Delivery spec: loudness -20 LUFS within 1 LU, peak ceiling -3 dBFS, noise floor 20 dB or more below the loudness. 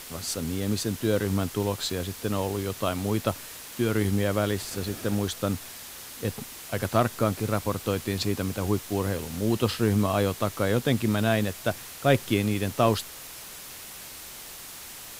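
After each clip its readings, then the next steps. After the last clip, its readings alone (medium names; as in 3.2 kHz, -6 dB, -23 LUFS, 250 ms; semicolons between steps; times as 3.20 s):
noise floor -42 dBFS; noise floor target -48 dBFS; loudness -27.5 LUFS; peak level -6.5 dBFS; loudness target -20.0 LUFS
-> noise reduction 6 dB, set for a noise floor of -42 dBFS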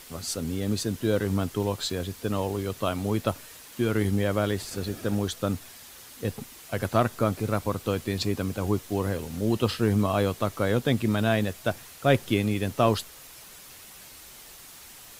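noise floor -47 dBFS; noise floor target -48 dBFS
-> noise reduction 6 dB, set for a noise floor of -47 dBFS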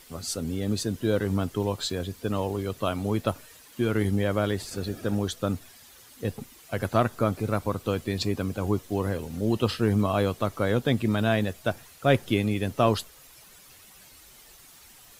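noise floor -52 dBFS; loudness -27.5 LUFS; peak level -6.5 dBFS; loudness target -20.0 LUFS
-> trim +7.5 dB; peak limiter -3 dBFS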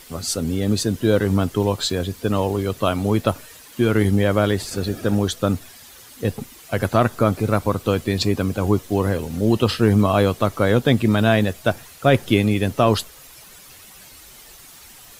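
loudness -20.5 LUFS; peak level -3.0 dBFS; noise floor -45 dBFS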